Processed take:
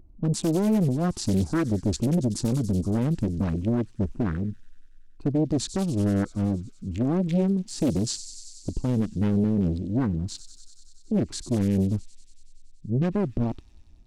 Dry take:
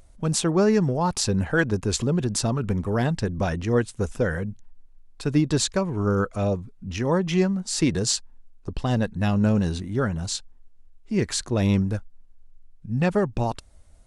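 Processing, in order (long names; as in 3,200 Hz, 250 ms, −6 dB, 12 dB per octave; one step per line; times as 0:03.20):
adaptive Wiener filter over 25 samples
low shelf with overshoot 410 Hz +6.5 dB, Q 3
brickwall limiter −9 dBFS, peak gain reduction 9 dB
on a send: delay with a high-pass on its return 94 ms, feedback 79%, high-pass 5,100 Hz, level −8 dB
on the sum: highs frequency-modulated by the lows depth 0.79 ms
level −6 dB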